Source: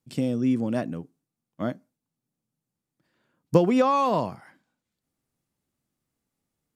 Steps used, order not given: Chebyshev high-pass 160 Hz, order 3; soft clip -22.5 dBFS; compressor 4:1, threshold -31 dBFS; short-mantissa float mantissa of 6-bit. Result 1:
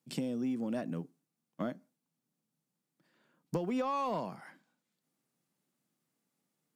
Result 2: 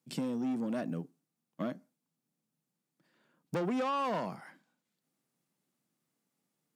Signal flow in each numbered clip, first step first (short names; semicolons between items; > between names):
compressor > Chebyshev high-pass > short-mantissa float > soft clip; short-mantissa float > soft clip > compressor > Chebyshev high-pass